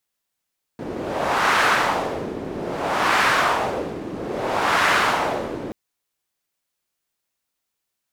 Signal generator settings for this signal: wind-like swept noise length 4.93 s, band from 320 Hz, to 1400 Hz, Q 1.4, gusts 3, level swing 13 dB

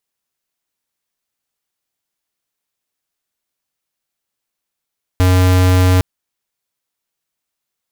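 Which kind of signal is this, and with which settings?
tone square 91.8 Hz -10.5 dBFS 0.81 s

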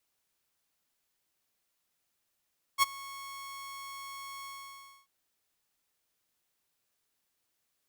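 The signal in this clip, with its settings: ADSR saw 1100 Hz, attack 45 ms, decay 20 ms, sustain -22 dB, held 1.67 s, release 0.62 s -17 dBFS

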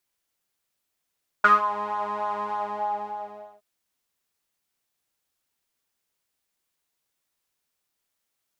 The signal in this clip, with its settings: synth patch with pulse-width modulation G#3, interval +19 st, sub -15.5 dB, filter bandpass, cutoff 710 Hz, Q 11, filter envelope 1 oct, attack 6.9 ms, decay 0.17 s, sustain -13 dB, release 1.13 s, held 1.04 s, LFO 3.3 Hz, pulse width 19%, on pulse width 11%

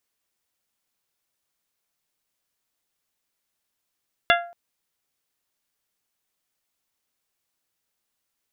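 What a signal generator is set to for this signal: glass hit bell, length 0.23 s, lowest mode 692 Hz, modes 6, decay 0.47 s, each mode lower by 0.5 dB, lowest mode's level -16 dB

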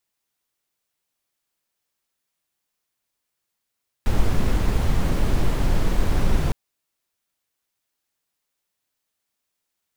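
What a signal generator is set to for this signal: noise brown, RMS -17.5 dBFS 2.46 s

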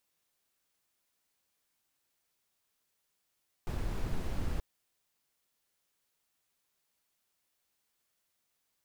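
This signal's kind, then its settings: noise brown, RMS -32.5 dBFS 0.93 s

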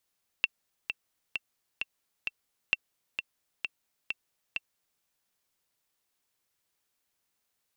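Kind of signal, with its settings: metronome 131 bpm, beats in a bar 5, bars 2, 2700 Hz, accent 7.5 dB -10.5 dBFS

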